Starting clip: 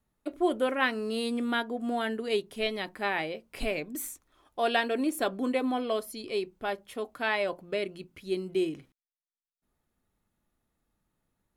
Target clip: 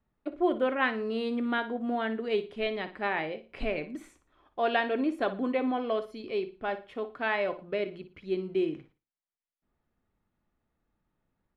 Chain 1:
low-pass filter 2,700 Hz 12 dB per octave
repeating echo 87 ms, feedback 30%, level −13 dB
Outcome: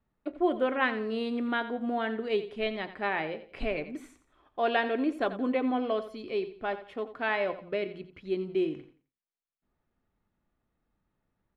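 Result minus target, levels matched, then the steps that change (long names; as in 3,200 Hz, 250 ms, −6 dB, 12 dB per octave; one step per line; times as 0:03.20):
echo 29 ms late
change: repeating echo 58 ms, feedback 30%, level −13 dB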